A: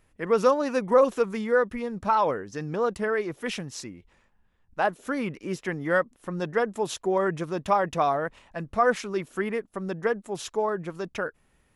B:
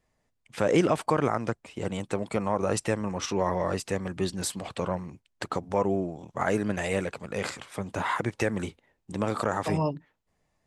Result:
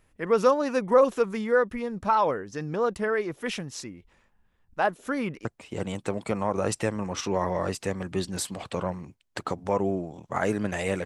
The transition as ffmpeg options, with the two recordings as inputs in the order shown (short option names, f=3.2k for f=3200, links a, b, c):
-filter_complex "[0:a]apad=whole_dur=11.05,atrim=end=11.05,atrim=end=5.452[a];[1:a]atrim=start=1.498:end=7.1[b];[a][b]acrossfade=d=0.004:c1=hsin:c2=hsin"